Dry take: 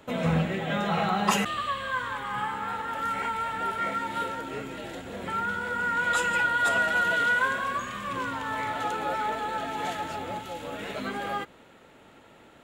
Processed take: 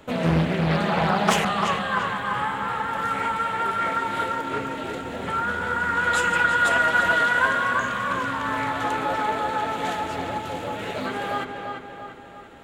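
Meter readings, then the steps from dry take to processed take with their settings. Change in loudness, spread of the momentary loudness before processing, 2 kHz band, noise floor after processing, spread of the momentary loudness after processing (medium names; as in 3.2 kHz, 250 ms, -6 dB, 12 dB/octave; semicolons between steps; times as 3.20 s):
+4.5 dB, 12 LU, +4.5 dB, -40 dBFS, 11 LU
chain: bass shelf 97 Hz +6 dB; hum notches 50/100/150/200 Hz; on a send: filtered feedback delay 343 ms, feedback 54%, low-pass 3.7 kHz, level -5 dB; on the sum: loudspeaker Doppler distortion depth 0.63 ms; trim +3.5 dB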